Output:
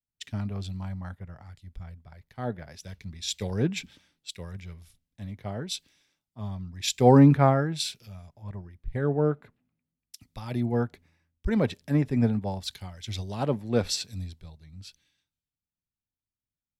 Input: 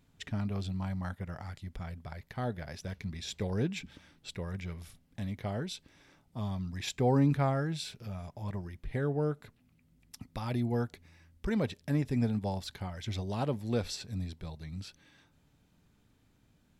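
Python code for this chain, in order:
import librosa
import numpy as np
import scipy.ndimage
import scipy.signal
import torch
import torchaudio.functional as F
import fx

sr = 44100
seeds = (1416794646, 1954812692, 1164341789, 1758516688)

y = fx.band_widen(x, sr, depth_pct=100)
y = F.gain(torch.from_numpy(y), 2.0).numpy()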